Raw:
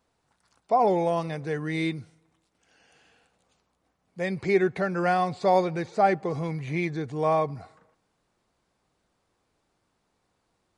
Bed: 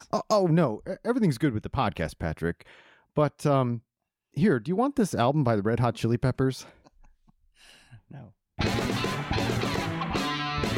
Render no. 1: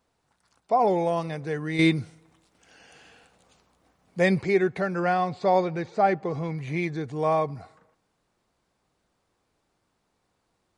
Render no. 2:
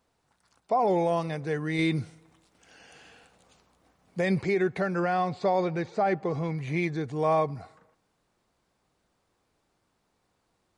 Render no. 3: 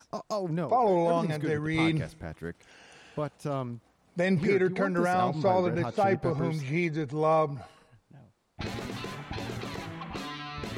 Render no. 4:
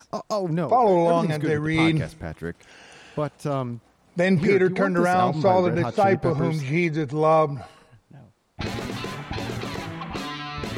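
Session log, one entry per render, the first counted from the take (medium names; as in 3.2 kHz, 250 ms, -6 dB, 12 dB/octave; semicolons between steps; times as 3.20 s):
1.79–4.42 s: gain +8 dB; 5.00–6.58 s: distance through air 67 m
peak limiter -16.5 dBFS, peak gain reduction 7.5 dB
add bed -9 dB
trim +6 dB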